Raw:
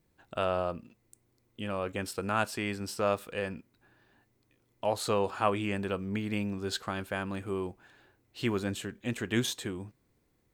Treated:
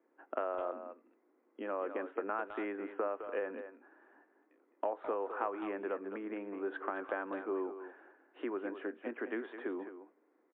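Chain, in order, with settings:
low-pass filter 1,700 Hz 24 dB per octave
downward compressor 16 to 1, threshold −36 dBFS, peak gain reduction 16 dB
Butterworth high-pass 270 Hz 48 dB per octave
far-end echo of a speakerphone 210 ms, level −9 dB
level +5 dB
MP3 64 kbit/s 8,000 Hz

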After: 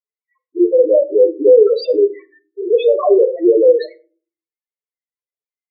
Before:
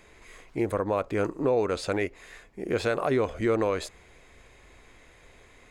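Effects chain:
noise gate −43 dBFS, range −58 dB
high-pass filter 490 Hz 12 dB per octave
high-shelf EQ 5,500 Hz −7.5 dB
spectral peaks only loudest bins 2
on a send at −9.5 dB: convolution reverb, pre-delay 5 ms
on the sum: boost into a limiter +23.5 dB
level −1 dB

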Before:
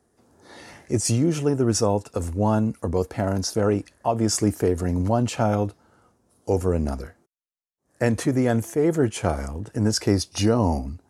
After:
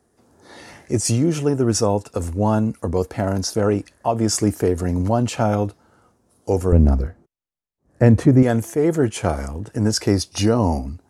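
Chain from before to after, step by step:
0:06.72–0:08.43: spectral tilt −3 dB per octave
level +2.5 dB

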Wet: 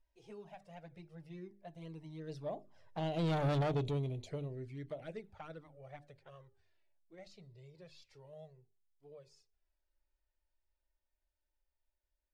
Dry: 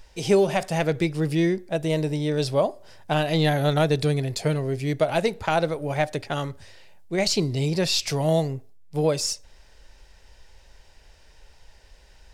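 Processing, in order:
source passing by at 0:03.49, 15 m/s, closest 1.9 metres
flanger swept by the level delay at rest 3.3 ms, full sweep at −38 dBFS
soft clipping −31.5 dBFS, distortion −5 dB
low-pass filter 2,400 Hz 6 dB per octave
mains-hum notches 50/100/150/200/250/300/350/400 Hz
level +2 dB
Ogg Vorbis 96 kbit/s 48,000 Hz

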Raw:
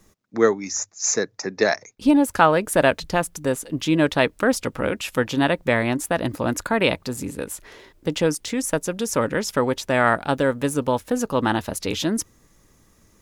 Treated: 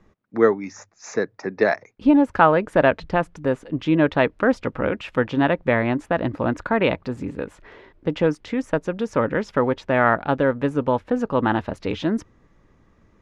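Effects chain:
low-pass filter 2,200 Hz 12 dB per octave
level +1 dB

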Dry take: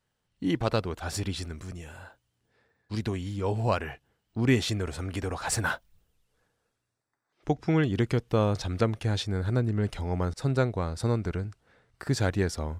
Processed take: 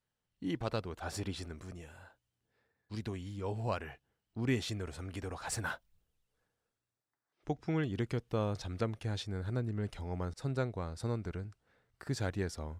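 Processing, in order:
0:00.98–0:01.86: parametric band 620 Hz +5.5 dB 3 octaves
level −9 dB

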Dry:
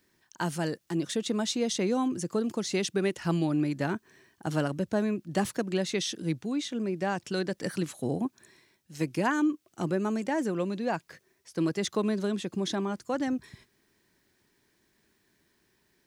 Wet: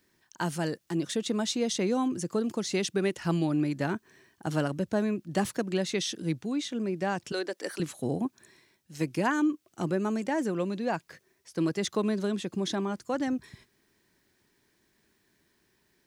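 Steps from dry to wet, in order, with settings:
0:07.32–0:07.80: high-pass filter 320 Hz 24 dB per octave

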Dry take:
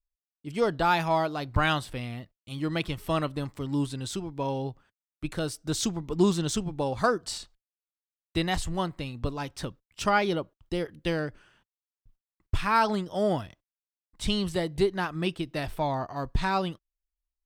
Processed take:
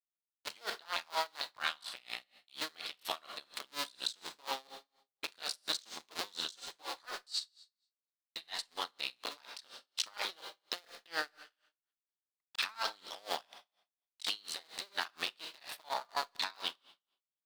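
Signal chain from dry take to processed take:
sub-harmonics by changed cycles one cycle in 2, muted
high-pass filter 1,000 Hz 12 dB per octave
noise gate with hold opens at −53 dBFS
parametric band 4,200 Hz +11 dB 0.67 octaves
leveller curve on the samples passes 1
downward compressor 3 to 1, threshold −34 dBFS, peak gain reduction 12.5 dB
brickwall limiter −24.5 dBFS, peak gain reduction 7.5 dB
0:06.56–0:08.82: multi-voice chorus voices 6, 1.3 Hz, delay 10 ms, depth 3 ms
four-comb reverb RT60 0.64 s, combs from 32 ms, DRR 8 dB
tremolo with a sine in dB 4.2 Hz, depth 29 dB
level +5.5 dB

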